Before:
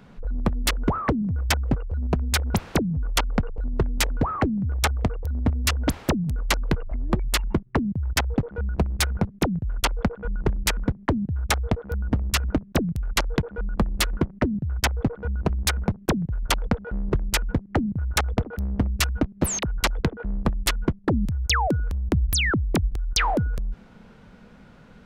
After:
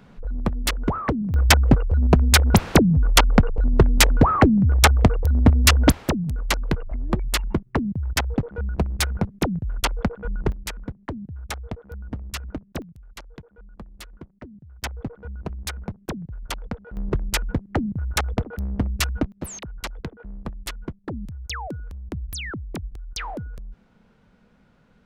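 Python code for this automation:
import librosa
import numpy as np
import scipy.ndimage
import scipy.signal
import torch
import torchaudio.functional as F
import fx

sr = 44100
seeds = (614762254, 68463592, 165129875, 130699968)

y = fx.gain(x, sr, db=fx.steps((0.0, -0.5), (1.34, 8.0), (5.92, 0.0), (10.52, -9.0), (12.82, -18.5), (14.82, -8.0), (16.97, -0.5), (19.32, -9.5)))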